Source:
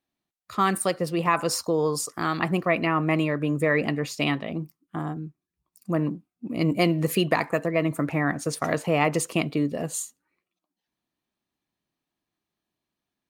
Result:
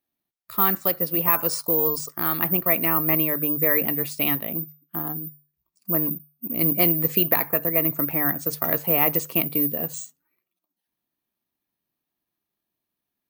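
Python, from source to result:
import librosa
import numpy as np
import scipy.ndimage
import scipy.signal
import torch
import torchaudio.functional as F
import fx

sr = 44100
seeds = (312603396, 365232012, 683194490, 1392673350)

y = fx.hum_notches(x, sr, base_hz=50, count=3)
y = (np.kron(scipy.signal.resample_poly(y, 1, 3), np.eye(3)[0]) * 3)[:len(y)]
y = y * librosa.db_to_amplitude(-2.5)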